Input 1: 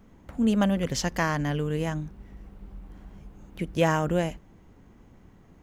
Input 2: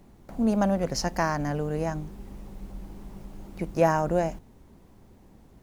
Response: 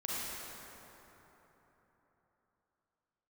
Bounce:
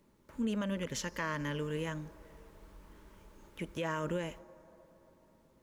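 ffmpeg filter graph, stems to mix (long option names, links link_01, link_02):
-filter_complex "[0:a]highshelf=frequency=6100:gain=-9,volume=-1.5dB[link_01];[1:a]acompressor=threshold=-25dB:ratio=6,volume=-1,volume=-9.5dB,asplit=3[link_02][link_03][link_04];[link_03]volume=-16dB[link_05];[link_04]apad=whole_len=247992[link_06];[link_01][link_06]sidechaingate=range=-33dB:threshold=-52dB:ratio=16:detection=peak[link_07];[2:a]atrim=start_sample=2205[link_08];[link_05][link_08]afir=irnorm=-1:irlink=0[link_09];[link_07][link_02][link_09]amix=inputs=3:normalize=0,asuperstop=centerf=740:order=8:qfactor=4.8,lowshelf=frequency=170:gain=-11.5,alimiter=level_in=2.5dB:limit=-24dB:level=0:latency=1:release=131,volume=-2.5dB"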